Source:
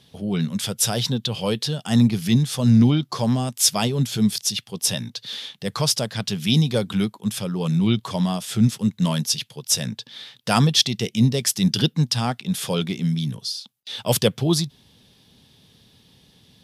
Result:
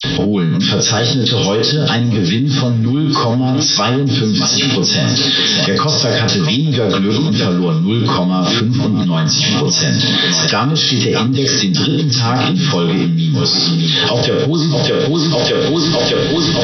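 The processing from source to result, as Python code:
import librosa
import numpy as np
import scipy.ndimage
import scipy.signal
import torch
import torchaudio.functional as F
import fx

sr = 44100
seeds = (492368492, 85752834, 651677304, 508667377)

p1 = fx.spec_trails(x, sr, decay_s=0.48)
p2 = fx.low_shelf(p1, sr, hz=120.0, db=4.5)
p3 = p2 + 0.62 * np.pad(p2, (int(6.5 * sr / 1000.0), 0))[:len(p2)]
p4 = fx.rider(p3, sr, range_db=5, speed_s=2.0)
p5 = p3 + (p4 * librosa.db_to_amplitude(-1.5))
p6 = fx.brickwall_lowpass(p5, sr, high_hz=6000.0)
p7 = fx.small_body(p6, sr, hz=(270.0, 390.0, 1200.0, 1700.0), ring_ms=85, db=12)
p8 = fx.dispersion(p7, sr, late='lows', ms=43.0, hz=1900.0)
p9 = p8 + fx.echo_thinned(p8, sr, ms=611, feedback_pct=53, hz=180.0, wet_db=-14.5, dry=0)
p10 = fx.env_flatten(p9, sr, amount_pct=100)
y = p10 * librosa.db_to_amplitude(-13.5)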